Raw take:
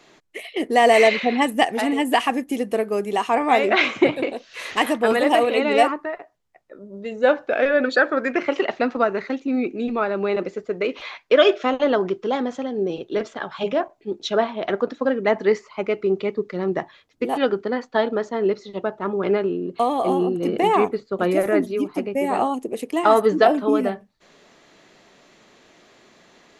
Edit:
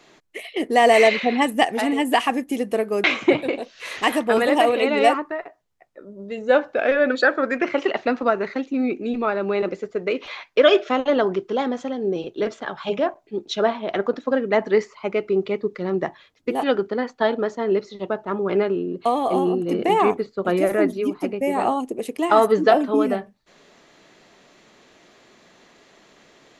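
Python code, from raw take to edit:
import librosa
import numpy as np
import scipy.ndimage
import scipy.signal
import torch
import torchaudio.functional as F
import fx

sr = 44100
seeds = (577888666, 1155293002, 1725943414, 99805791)

y = fx.edit(x, sr, fx.cut(start_s=3.04, length_s=0.74), tone=tone)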